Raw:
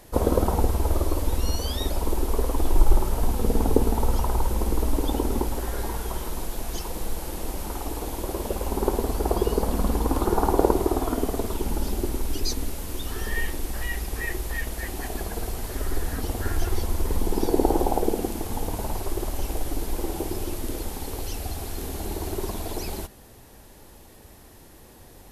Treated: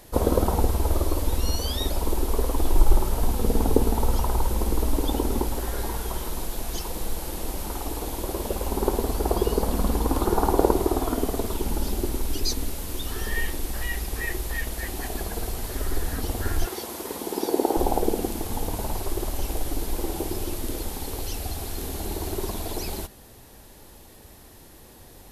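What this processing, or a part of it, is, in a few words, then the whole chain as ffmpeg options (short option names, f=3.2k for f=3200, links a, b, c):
presence and air boost: -filter_complex "[0:a]asettb=1/sr,asplit=3[a][b][c];[a]atrim=end=16.664[d];[b]atrim=start=16.66:end=17.77,asetpts=PTS-STARTPTS,afade=t=in:d=0.004:c=qsin,afade=t=out:st=1.106:d=0.004:c=qsin,highpass=280[e];[c]atrim=start=17.766[f];[d][e]acrossfade=d=0.004:c1=hsin:c2=qsin[g];[g][f]acrossfade=d=0.004:c1=qsin:c2=hsin,equalizer=f=3.9k:t=o:w=0.77:g=2.5,highshelf=f=9.4k:g=3.5"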